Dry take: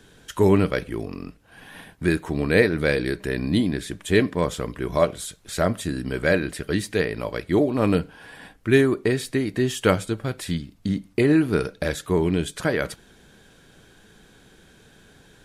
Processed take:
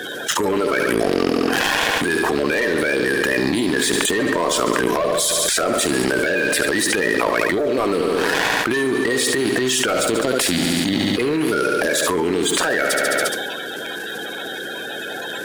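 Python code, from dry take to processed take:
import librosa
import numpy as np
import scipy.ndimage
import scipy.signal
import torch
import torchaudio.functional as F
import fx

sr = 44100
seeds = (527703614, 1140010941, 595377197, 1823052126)

p1 = fx.spec_quant(x, sr, step_db=30)
p2 = scipy.signal.sosfilt(scipy.signal.butter(2, 380.0, 'highpass', fs=sr, output='sos'), p1)
p3 = fx.leveller(p2, sr, passes=3)
p4 = p3 + fx.echo_feedback(p3, sr, ms=70, feedback_pct=57, wet_db=-13.0, dry=0)
p5 = fx.transient(p4, sr, attack_db=-12, sustain_db=3)
p6 = fx.env_flatten(p5, sr, amount_pct=100)
y = p6 * librosa.db_to_amplitude(-7.5)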